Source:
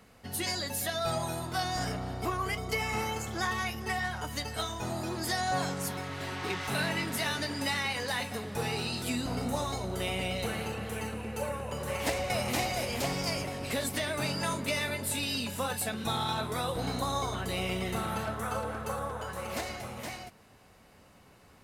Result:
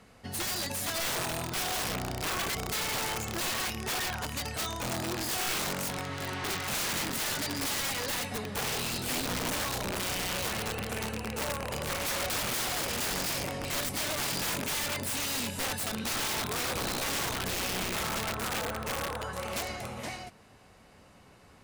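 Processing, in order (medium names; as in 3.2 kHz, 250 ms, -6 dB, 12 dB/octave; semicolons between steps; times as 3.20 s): rattle on loud lows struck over -35 dBFS, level -30 dBFS; low-pass 11 kHz 12 dB/octave; integer overflow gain 28 dB; trim +1.5 dB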